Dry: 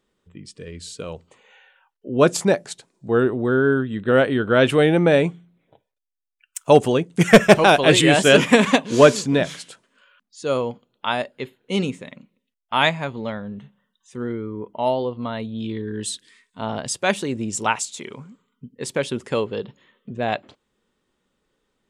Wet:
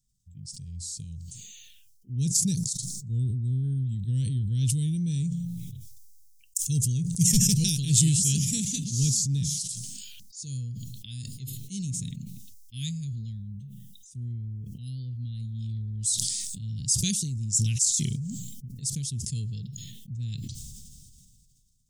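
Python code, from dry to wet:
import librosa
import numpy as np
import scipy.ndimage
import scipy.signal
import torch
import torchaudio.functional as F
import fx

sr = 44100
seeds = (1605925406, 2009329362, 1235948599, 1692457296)

y = fx.band_shelf(x, sr, hz=1500.0, db=-16.0, octaves=1.7, at=(2.55, 3.64))
y = fx.peak_eq(y, sr, hz=5900.0, db=-5.5, octaves=1.2, at=(13.51, 14.5))
y = scipy.signal.sosfilt(scipy.signal.ellip(3, 1.0, 70, [130.0, 5700.0], 'bandstop', fs=sr, output='sos'), y)
y = fx.band_shelf(y, sr, hz=760.0, db=8.0, octaves=1.7)
y = fx.sustainer(y, sr, db_per_s=25.0)
y = F.gain(torch.from_numpy(y), 3.5).numpy()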